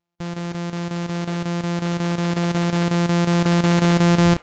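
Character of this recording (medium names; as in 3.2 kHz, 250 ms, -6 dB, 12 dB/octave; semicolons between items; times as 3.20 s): a buzz of ramps at a fixed pitch in blocks of 256 samples; chopped level 5.5 Hz, depth 65%, duty 85%; AAC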